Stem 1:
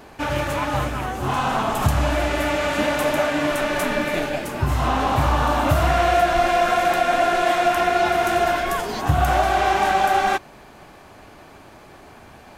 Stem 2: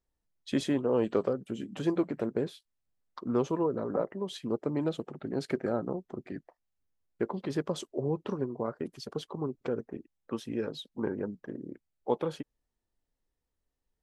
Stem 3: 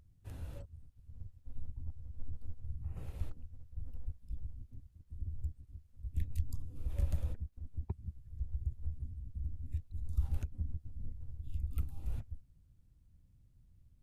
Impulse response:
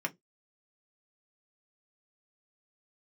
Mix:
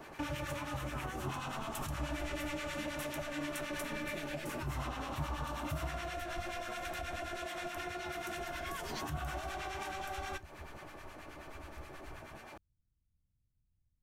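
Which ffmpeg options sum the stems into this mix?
-filter_complex "[0:a]acompressor=threshold=0.0447:ratio=4,acrossover=split=1100[s0][s1];[s0]aeval=exprs='val(0)*(1-0.7/2+0.7/2*cos(2*PI*9.4*n/s))':c=same[s2];[s1]aeval=exprs='val(0)*(1-0.7/2-0.7/2*cos(2*PI*9.4*n/s))':c=same[s3];[s2][s3]amix=inputs=2:normalize=0,volume=0.531,asplit=2[s4][s5];[s5]volume=0.473[s6];[2:a]volume=0.168[s7];[3:a]atrim=start_sample=2205[s8];[s6][s8]afir=irnorm=-1:irlink=0[s9];[s4][s7][s9]amix=inputs=3:normalize=0,acrossover=split=250|3000[s10][s11][s12];[s11]acompressor=threshold=0.01:ratio=6[s13];[s10][s13][s12]amix=inputs=3:normalize=0"

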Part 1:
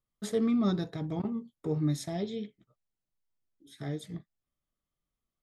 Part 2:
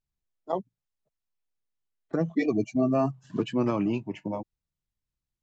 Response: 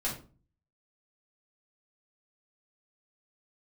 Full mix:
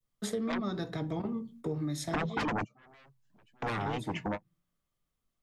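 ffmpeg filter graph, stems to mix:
-filter_complex "[0:a]acompressor=threshold=0.0355:ratio=6,volume=1.33,asplit=3[s0][s1][s2];[s1]volume=0.133[s3];[1:a]aeval=exprs='0.211*sin(PI/2*5.62*val(0)/0.211)':c=same,volume=0.562,afade=t=in:st=1.41:d=0.52:silence=0.354813,afade=t=out:st=2.88:d=0.67:silence=0.473151[s4];[s2]apad=whole_len=239320[s5];[s4][s5]sidechaingate=range=0.0126:threshold=0.00126:ratio=16:detection=peak[s6];[2:a]atrim=start_sample=2205[s7];[s3][s7]afir=irnorm=-1:irlink=0[s8];[s0][s6][s8]amix=inputs=3:normalize=0,adynamicequalizer=threshold=0.0141:dfrequency=1300:dqfactor=0.71:tfrequency=1300:tqfactor=0.71:attack=5:release=100:ratio=0.375:range=2.5:mode=boostabove:tftype=bell,acrossover=split=97|270[s9][s10][s11];[s9]acompressor=threshold=0.00355:ratio=4[s12];[s10]acompressor=threshold=0.0126:ratio=4[s13];[s11]acompressor=threshold=0.02:ratio=4[s14];[s12][s13][s14]amix=inputs=3:normalize=0"

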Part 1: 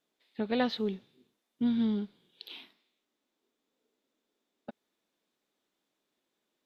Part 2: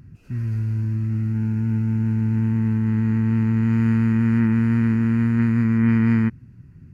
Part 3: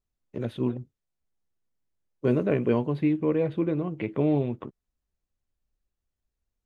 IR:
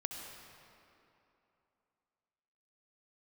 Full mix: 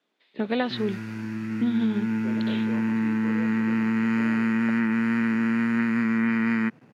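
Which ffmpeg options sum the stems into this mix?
-filter_complex "[0:a]aemphasis=mode=reproduction:type=bsi,volume=1.12[s0];[1:a]aeval=exprs='sgn(val(0))*max(abs(val(0))-0.00224,0)':c=same,adelay=400,volume=1[s1];[2:a]volume=0.141[s2];[s0][s1][s2]amix=inputs=3:normalize=0,highpass=f=180:w=0.5412,highpass=f=180:w=1.3066,equalizer=f=2200:w=0.32:g=9,acompressor=threshold=0.1:ratio=6"

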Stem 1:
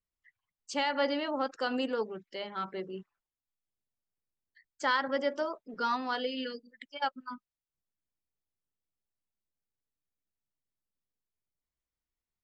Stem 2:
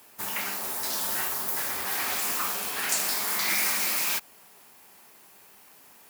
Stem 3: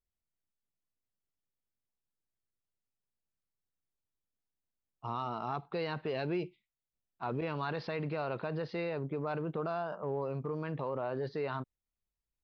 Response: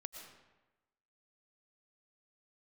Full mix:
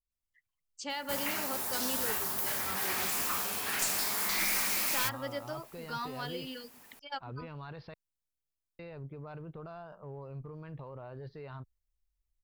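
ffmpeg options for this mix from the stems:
-filter_complex "[0:a]highshelf=f=3200:g=9.5,adelay=100,volume=0.355[s0];[1:a]adelay=900,volume=0.668[s1];[2:a]asubboost=boost=4.5:cutoff=96,volume=0.299,asplit=3[s2][s3][s4];[s2]atrim=end=7.94,asetpts=PTS-STARTPTS,afade=t=out:st=7.936:d=0.004:c=hsin[s5];[s3]atrim=start=7.94:end=8.79,asetpts=PTS-STARTPTS,volume=0[s6];[s4]atrim=start=8.79,asetpts=PTS-STARTPTS,afade=t=in:d=0.004:c=hsin[s7];[s5][s6][s7]concat=n=3:v=0:a=1[s8];[s0][s1][s8]amix=inputs=3:normalize=0,lowshelf=f=130:g=10,aeval=exprs='clip(val(0),-1,0.0398)':c=same"

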